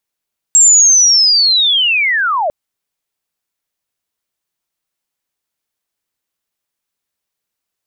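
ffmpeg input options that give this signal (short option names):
-f lavfi -i "aevalsrc='pow(10,(-3.5-9*t/1.95)/20)*sin(2*PI*(7600*t-7040*t*t/(2*1.95)))':d=1.95:s=44100"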